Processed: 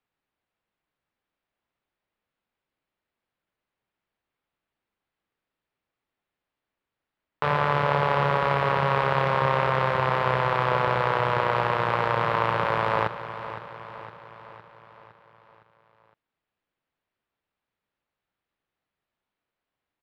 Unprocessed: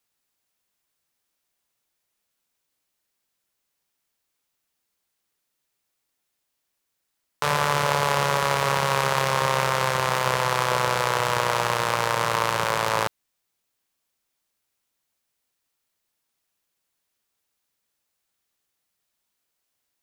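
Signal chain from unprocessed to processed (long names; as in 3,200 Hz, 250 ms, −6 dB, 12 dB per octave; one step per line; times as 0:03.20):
high-frequency loss of the air 420 metres
repeating echo 511 ms, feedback 56%, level −12.5 dB
level +1.5 dB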